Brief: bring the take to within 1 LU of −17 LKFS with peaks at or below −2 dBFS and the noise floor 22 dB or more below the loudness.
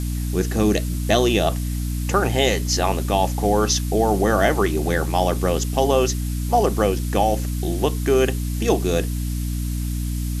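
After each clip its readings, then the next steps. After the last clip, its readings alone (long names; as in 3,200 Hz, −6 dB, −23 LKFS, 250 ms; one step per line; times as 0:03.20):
mains hum 60 Hz; hum harmonics up to 300 Hz; level of the hum −22 dBFS; background noise floor −25 dBFS; target noise floor −43 dBFS; integrated loudness −21.0 LKFS; sample peak −4.0 dBFS; target loudness −17.0 LKFS
→ mains-hum notches 60/120/180/240/300 Hz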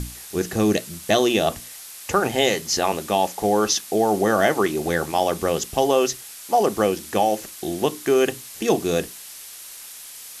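mains hum none found; background noise floor −40 dBFS; target noise floor −44 dBFS
→ broadband denoise 6 dB, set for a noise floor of −40 dBFS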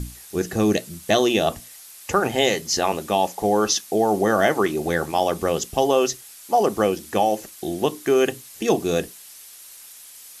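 background noise floor −44 dBFS; integrated loudness −22.0 LKFS; sample peak −5.0 dBFS; target loudness −17.0 LKFS
→ level +5 dB
brickwall limiter −2 dBFS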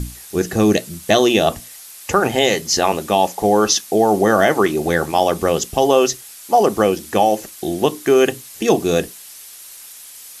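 integrated loudness −17.0 LKFS; sample peak −2.0 dBFS; background noise floor −39 dBFS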